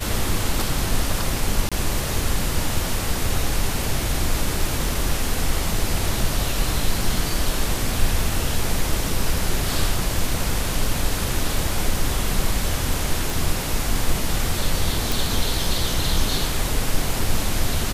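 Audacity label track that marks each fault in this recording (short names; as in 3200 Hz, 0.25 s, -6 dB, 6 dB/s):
1.690000	1.720000	gap 26 ms
13.300000	13.300000	pop
15.120000	15.120000	pop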